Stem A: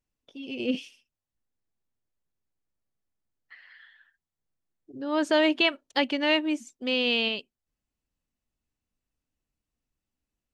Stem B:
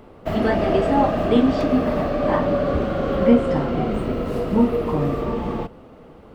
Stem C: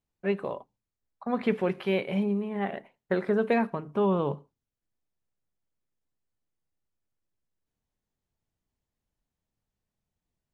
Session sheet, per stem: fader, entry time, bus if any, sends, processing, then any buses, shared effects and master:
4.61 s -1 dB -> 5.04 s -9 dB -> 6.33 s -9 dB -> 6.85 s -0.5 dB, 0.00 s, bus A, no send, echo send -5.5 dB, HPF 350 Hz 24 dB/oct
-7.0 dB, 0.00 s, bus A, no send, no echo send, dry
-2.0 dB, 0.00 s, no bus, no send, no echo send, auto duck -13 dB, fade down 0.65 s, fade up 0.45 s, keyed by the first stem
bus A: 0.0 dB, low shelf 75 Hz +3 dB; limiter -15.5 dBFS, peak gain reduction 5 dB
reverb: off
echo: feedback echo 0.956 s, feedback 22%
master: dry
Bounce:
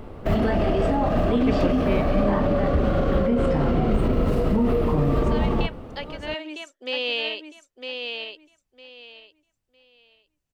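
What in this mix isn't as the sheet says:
stem B -7.0 dB -> +3.0 dB; master: extra low shelf 110 Hz +8.5 dB

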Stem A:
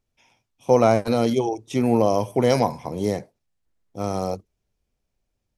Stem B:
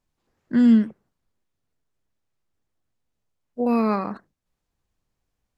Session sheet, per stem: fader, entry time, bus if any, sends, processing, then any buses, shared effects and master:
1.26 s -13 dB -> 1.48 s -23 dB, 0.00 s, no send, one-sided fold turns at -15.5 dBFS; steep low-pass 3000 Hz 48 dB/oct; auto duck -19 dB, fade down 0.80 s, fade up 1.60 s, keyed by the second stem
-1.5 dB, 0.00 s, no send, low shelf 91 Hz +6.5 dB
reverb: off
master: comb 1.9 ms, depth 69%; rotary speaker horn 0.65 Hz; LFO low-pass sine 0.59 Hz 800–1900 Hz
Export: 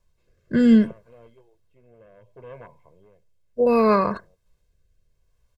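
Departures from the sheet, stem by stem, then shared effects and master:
stem B -1.5 dB -> +6.5 dB; master: missing LFO low-pass sine 0.59 Hz 800–1900 Hz

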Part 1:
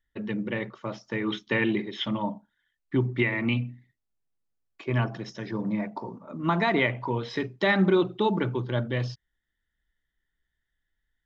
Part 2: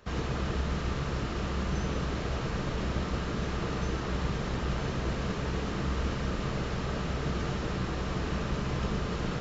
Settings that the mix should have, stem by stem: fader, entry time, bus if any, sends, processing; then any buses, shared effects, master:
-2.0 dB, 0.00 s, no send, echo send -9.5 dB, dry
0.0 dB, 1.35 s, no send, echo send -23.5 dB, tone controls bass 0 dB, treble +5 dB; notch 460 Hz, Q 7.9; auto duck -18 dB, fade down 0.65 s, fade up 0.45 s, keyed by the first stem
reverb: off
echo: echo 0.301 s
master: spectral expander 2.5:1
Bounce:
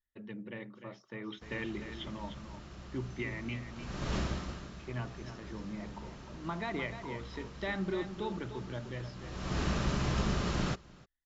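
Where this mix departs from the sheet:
stem 1 -2.0 dB -> -13.5 dB; master: missing spectral expander 2.5:1

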